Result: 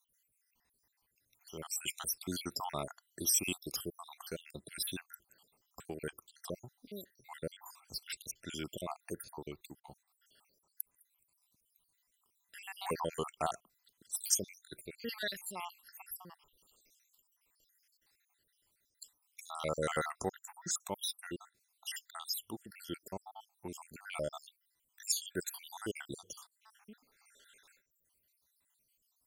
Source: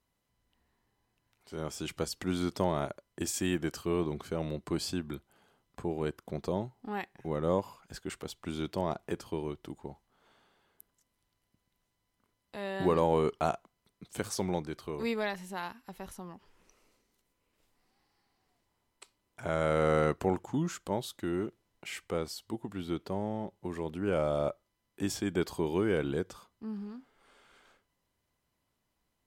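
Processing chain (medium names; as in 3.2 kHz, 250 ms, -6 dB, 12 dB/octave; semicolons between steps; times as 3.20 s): random holes in the spectrogram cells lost 72%; pre-emphasis filter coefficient 0.9; trim +12.5 dB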